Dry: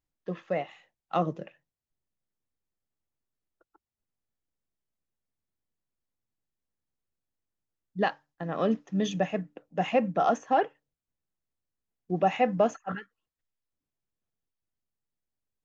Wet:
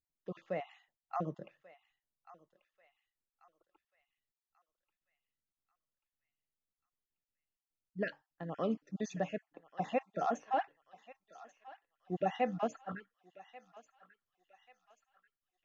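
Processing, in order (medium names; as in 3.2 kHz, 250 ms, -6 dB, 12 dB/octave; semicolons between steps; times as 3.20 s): random holes in the spectrogram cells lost 29%; 0.62–1.29 s: band-stop 5.6 kHz, Q 13; thinning echo 1138 ms, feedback 55%, high-pass 1.2 kHz, level -15 dB; trim -8 dB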